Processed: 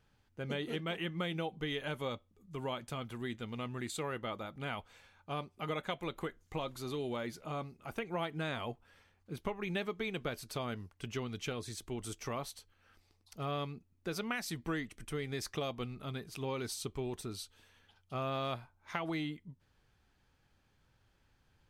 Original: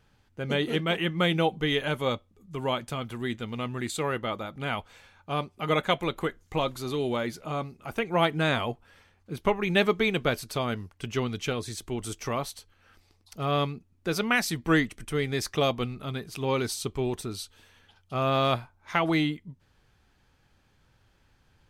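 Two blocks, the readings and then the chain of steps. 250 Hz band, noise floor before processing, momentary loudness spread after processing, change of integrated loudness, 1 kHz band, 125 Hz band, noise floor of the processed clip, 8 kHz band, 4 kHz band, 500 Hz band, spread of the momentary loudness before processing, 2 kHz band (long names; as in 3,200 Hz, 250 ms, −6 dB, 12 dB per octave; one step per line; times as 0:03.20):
−10.5 dB, −66 dBFS, 7 LU, −11.0 dB, −11.0 dB, −10.0 dB, −73 dBFS, −8.0 dB, −11.0 dB, −11.0 dB, 11 LU, −12.0 dB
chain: downward compressor 4 to 1, threshold −27 dBFS, peak gain reduction 8.5 dB
level −7 dB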